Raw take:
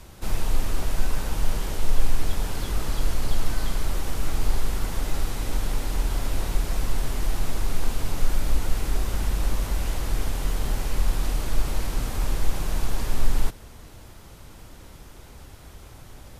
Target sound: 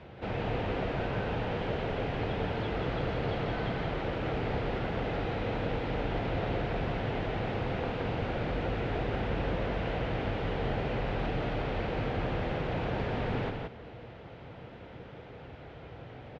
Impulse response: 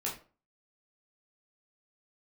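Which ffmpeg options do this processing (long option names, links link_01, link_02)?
-filter_complex "[0:a]highpass=100,equalizer=frequency=130:width_type=q:width=4:gain=4,equalizer=frequency=480:width_type=q:width=4:gain=7,equalizer=frequency=700:width_type=q:width=4:gain=4,equalizer=frequency=1100:width_type=q:width=4:gain=-5,lowpass=frequency=3000:width=0.5412,lowpass=frequency=3000:width=1.3066,asplit=2[link_01][link_02];[link_02]aecho=0:1:172:0.631[link_03];[link_01][link_03]amix=inputs=2:normalize=0"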